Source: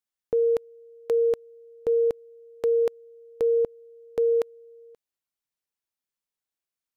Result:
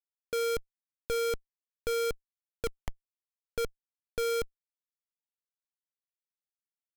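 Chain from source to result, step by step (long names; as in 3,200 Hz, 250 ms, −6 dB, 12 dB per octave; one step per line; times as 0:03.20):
low-pass that shuts in the quiet parts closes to 830 Hz
time-frequency box erased 0:02.66–0:03.58, 340–700 Hz
comparator with hysteresis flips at −34 dBFS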